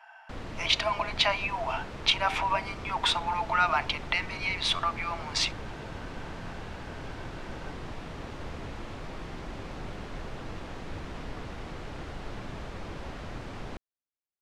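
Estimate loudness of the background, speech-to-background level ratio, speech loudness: -41.0 LUFS, 13.0 dB, -28.0 LUFS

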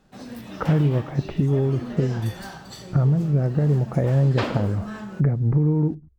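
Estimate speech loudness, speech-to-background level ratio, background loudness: -22.5 LUFS, 13.0 dB, -35.5 LUFS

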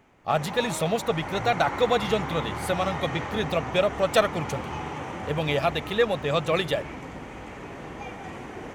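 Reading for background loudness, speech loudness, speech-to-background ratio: -34.5 LUFS, -26.0 LUFS, 8.5 dB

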